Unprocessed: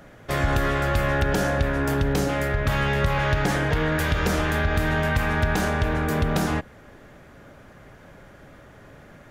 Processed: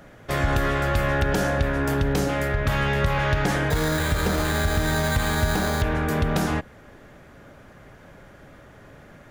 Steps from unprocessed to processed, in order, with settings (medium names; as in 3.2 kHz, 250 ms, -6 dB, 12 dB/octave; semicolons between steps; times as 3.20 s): 3.70–5.82 s: careless resampling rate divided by 8×, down filtered, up hold